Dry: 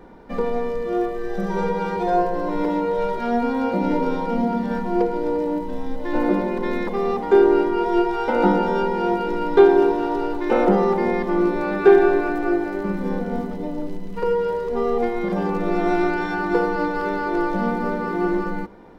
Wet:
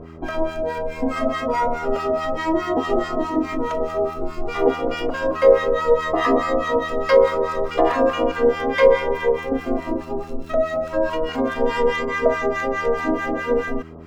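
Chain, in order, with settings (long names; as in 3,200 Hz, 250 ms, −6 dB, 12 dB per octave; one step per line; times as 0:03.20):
two-band tremolo in antiphase 3.5 Hz, depth 100%, crossover 730 Hz
hum with harmonics 60 Hz, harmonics 5, −45 dBFS −1 dB per octave
wrong playback speed 33 rpm record played at 45 rpm
level +5 dB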